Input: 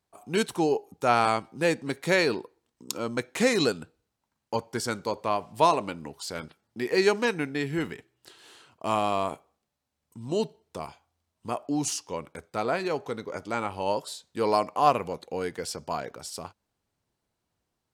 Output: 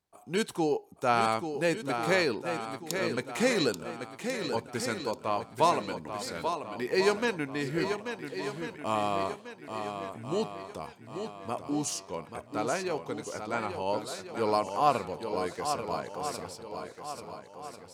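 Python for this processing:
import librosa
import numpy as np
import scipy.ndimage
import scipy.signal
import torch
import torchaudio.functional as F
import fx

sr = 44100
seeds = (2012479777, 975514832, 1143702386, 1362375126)

y = fx.echo_swing(x, sr, ms=1393, ratio=1.5, feedback_pct=39, wet_db=-7.5)
y = y * 10.0 ** (-3.5 / 20.0)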